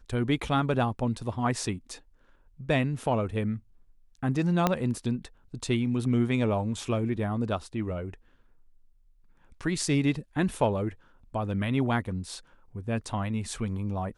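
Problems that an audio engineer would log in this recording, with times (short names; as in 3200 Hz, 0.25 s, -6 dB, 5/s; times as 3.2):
4.67 pop -9 dBFS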